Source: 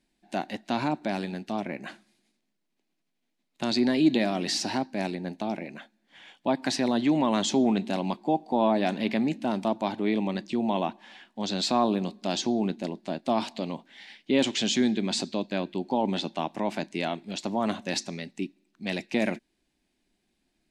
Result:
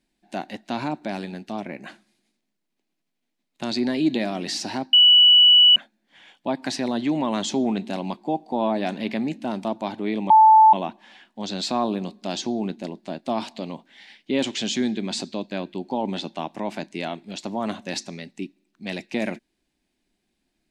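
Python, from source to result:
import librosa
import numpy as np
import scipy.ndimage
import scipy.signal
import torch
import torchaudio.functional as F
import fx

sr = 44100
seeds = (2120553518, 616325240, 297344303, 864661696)

y = fx.edit(x, sr, fx.bleep(start_s=4.93, length_s=0.83, hz=2950.0, db=-9.5),
    fx.bleep(start_s=10.3, length_s=0.43, hz=876.0, db=-8.5), tone=tone)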